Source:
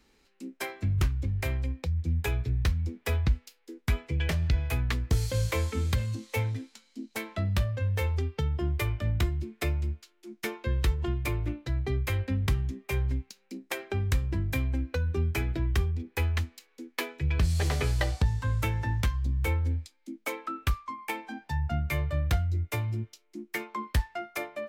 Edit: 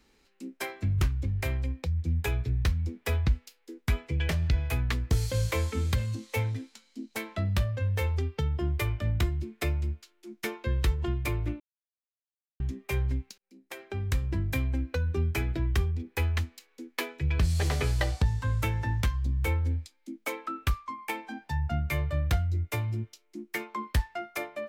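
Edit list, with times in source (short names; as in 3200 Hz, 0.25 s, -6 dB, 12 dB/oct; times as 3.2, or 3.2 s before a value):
11.6–12.6 mute
13.38–14.3 fade in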